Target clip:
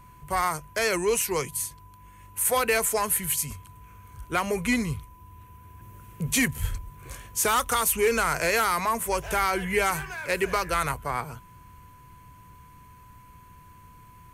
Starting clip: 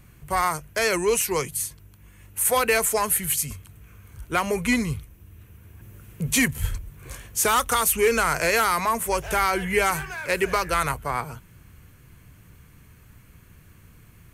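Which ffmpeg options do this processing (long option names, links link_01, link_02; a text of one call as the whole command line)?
ffmpeg -i in.wav -af "acontrast=45,aeval=exprs='val(0)+0.00708*sin(2*PI*1000*n/s)':channel_layout=same,volume=-8dB" out.wav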